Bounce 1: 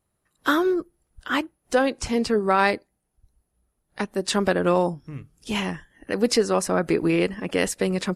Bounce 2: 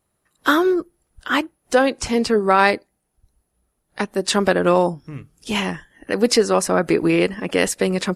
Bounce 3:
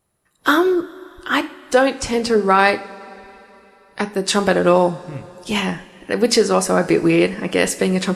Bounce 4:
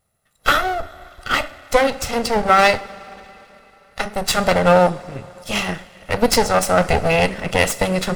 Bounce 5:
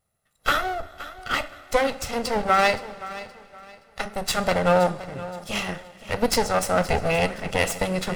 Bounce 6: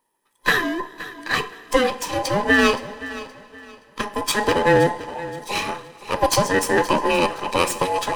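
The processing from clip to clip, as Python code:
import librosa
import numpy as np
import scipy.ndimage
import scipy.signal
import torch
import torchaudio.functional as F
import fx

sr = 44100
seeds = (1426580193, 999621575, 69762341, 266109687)

y1 = fx.low_shelf(x, sr, hz=160.0, db=-5.0)
y1 = F.gain(torch.from_numpy(y1), 5.0).numpy()
y2 = fx.rev_double_slope(y1, sr, seeds[0], early_s=0.4, late_s=3.6, knee_db=-18, drr_db=9.5)
y2 = F.gain(torch.from_numpy(y2), 1.0).numpy()
y3 = fx.lower_of_two(y2, sr, delay_ms=1.5)
y3 = F.gain(torch.from_numpy(y3), 1.5).numpy()
y4 = fx.echo_feedback(y3, sr, ms=521, feedback_pct=30, wet_db=-16)
y4 = F.gain(torch.from_numpy(y4), -6.0).numpy()
y5 = fx.band_invert(y4, sr, width_hz=1000)
y5 = F.gain(torch.from_numpy(y5), 3.0).numpy()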